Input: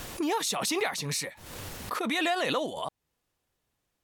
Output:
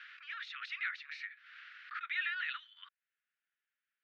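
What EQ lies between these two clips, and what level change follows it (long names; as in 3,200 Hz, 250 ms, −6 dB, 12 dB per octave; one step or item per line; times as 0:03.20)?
Butterworth high-pass 1,400 Hz 72 dB per octave
high-frequency loss of the air 310 metres
head-to-tape spacing loss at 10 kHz 36 dB
+7.0 dB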